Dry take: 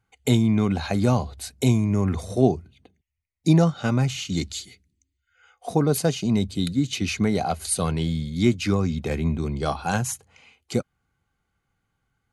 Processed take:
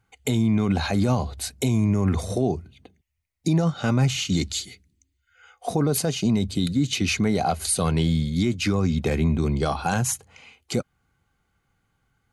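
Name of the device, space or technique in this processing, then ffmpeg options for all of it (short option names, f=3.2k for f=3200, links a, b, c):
stacked limiters: -af "alimiter=limit=-10.5dB:level=0:latency=1:release=307,alimiter=limit=-14.5dB:level=0:latency=1:release=37,alimiter=limit=-17.5dB:level=0:latency=1:release=90,volume=4.5dB"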